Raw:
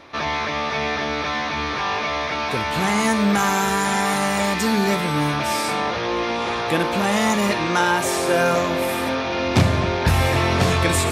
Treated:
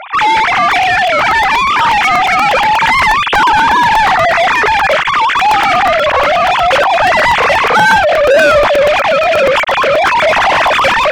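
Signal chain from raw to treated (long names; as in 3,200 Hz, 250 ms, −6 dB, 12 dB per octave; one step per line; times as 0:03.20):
three sine waves on the formant tracks
mid-hump overdrive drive 24 dB, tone 2,900 Hz, clips at −4 dBFS
regular buffer underruns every 0.12 s, samples 128, repeat, from 0:00.71
level +2.5 dB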